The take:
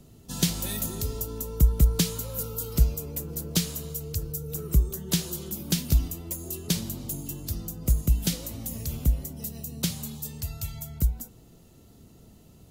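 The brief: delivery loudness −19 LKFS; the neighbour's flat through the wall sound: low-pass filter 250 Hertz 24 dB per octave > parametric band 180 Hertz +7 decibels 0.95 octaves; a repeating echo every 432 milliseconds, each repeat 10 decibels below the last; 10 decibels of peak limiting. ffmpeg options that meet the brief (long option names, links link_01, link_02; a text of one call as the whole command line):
ffmpeg -i in.wav -af "alimiter=limit=-19dB:level=0:latency=1,lowpass=frequency=250:width=0.5412,lowpass=frequency=250:width=1.3066,equalizer=frequency=180:width_type=o:width=0.95:gain=7,aecho=1:1:432|864|1296|1728:0.316|0.101|0.0324|0.0104,volume=13.5dB" out.wav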